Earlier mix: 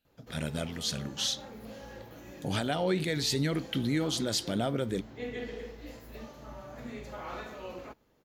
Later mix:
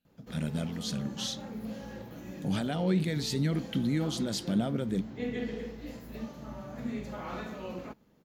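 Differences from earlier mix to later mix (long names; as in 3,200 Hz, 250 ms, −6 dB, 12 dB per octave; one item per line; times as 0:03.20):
speech −5.0 dB
master: add parametric band 190 Hz +11.5 dB 0.92 octaves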